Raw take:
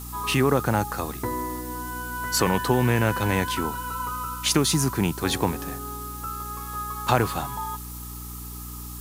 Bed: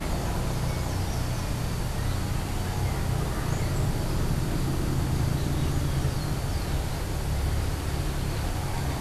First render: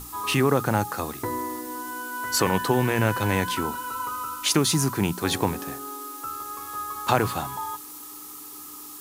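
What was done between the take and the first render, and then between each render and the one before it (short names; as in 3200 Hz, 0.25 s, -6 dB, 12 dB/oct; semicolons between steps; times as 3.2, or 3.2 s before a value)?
notches 60/120/180/240 Hz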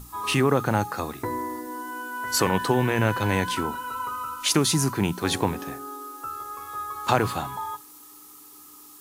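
noise print and reduce 7 dB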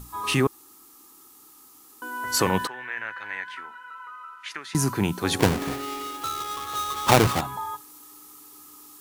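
0.47–2.02 room tone; 2.67–4.75 band-pass 1800 Hz, Q 3.3; 5.39–7.41 half-waves squared off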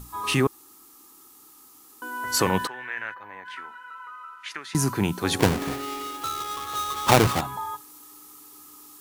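3.14–3.45 spectral gain 1300–12000 Hz -13 dB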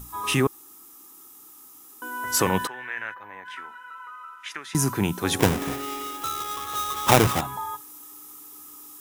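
high shelf 10000 Hz +6 dB; notch 4400 Hz, Q 8.7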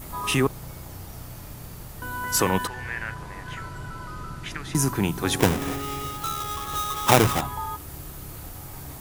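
add bed -11.5 dB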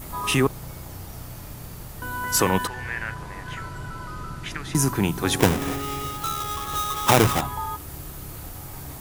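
gain +1.5 dB; limiter -3 dBFS, peak gain reduction 3 dB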